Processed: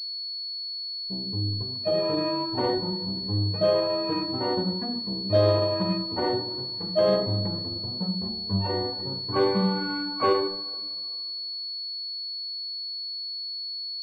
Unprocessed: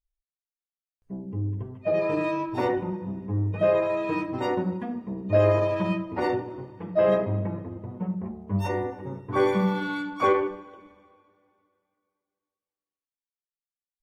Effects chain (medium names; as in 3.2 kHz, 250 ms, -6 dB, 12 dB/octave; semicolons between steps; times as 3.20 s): distance through air 190 m; class-D stage that switches slowly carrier 4.4 kHz